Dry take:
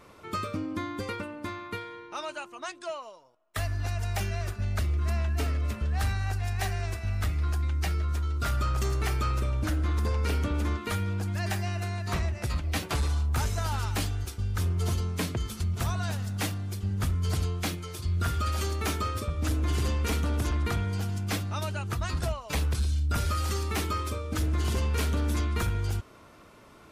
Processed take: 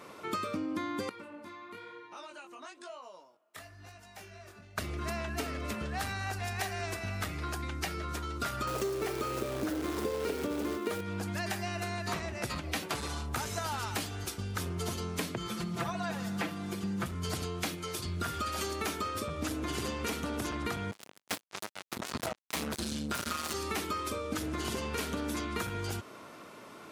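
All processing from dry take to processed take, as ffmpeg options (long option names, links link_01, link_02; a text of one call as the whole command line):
ffmpeg -i in.wav -filter_complex "[0:a]asettb=1/sr,asplit=3[link_01][link_02][link_03];[link_01]atrim=end=1.094[link_04];[link_02]atrim=start=1.09:end=4.78,asetpts=PTS-STARTPTS,afade=type=in:duration=0.004:curve=qsin,afade=type=out:start_time=3.686:duration=0.004:curve=qsin,acompressor=threshold=-48dB:ratio=3:attack=3.2:release=140:knee=1:detection=peak,flanger=delay=16:depth=7.9:speed=1[link_05];[link_03]atrim=start=4.776[link_06];[link_04][link_05]acrossfade=duration=0.004:curve1=hsin:curve2=qsin[link_07];[link_07][link_06]acrossfade=duration=0.004:curve1=qsin:curve2=hsin,asettb=1/sr,asplit=3[link_08][link_09][link_10];[link_08]atrim=end=8.674[link_11];[link_09]atrim=start=8.67:end=11.01,asetpts=PTS-STARTPTS,afade=type=in:duration=0.004:curve=qsin,afade=type=out:start_time=2.336:duration=0.004:curve=qsin,acrusher=bits=3:mode=log:mix=0:aa=0.000001,equalizer=frequency=420:width=1.2:gain=12[link_12];[link_10]atrim=start=11.006[link_13];[link_11][link_12]acrossfade=duration=0.004:curve1=hsin:curve2=qsin[link_14];[link_14][link_13]acrossfade=duration=0.004:curve1=qsin:curve2=hsin,asettb=1/sr,asplit=3[link_15][link_16][link_17];[link_15]atrim=end=15.374[link_18];[link_16]atrim=start=15.37:end=17.06,asetpts=PTS-STARTPTS,afade=type=in:duration=0.004:curve=qsin,afade=type=out:start_time=1.686:duration=0.004:curve=qsin,acrossover=split=3100[link_19][link_20];[link_20]acompressor=threshold=-51dB:ratio=4:attack=1:release=60[link_21];[link_19][link_21]amix=inputs=2:normalize=0,aecho=1:1:5.9:0.93,atrim=end_sample=74529[link_22];[link_17]atrim=start=17.056[link_23];[link_18][link_22]acrossfade=duration=0.004:curve1=hsin:curve2=qsin[link_24];[link_24][link_23]acrossfade=duration=0.004:curve1=qsin:curve2=hsin,asettb=1/sr,asplit=3[link_25][link_26][link_27];[link_25]atrim=end=20.914[link_28];[link_26]atrim=start=20.91:end=23.54,asetpts=PTS-STARTPTS,afade=type=in:duration=0.004:curve=qsin,afade=type=out:start_time=2.626:duration=0.004:curve=qsin,bandreject=frequency=50:width_type=h:width=6,bandreject=frequency=100:width_type=h:width=6,bandreject=frequency=150:width_type=h:width=6,bandreject=frequency=200:width_type=h:width=6,acrusher=bits=3:mix=0:aa=0.5[link_29];[link_27]atrim=start=23.536[link_30];[link_28][link_29]acrossfade=duration=0.004:curve1=hsin:curve2=qsin[link_31];[link_31][link_30]acrossfade=duration=0.004:curve1=qsin:curve2=hsin,highpass=180,acompressor=threshold=-36dB:ratio=6,volume=4.5dB" out.wav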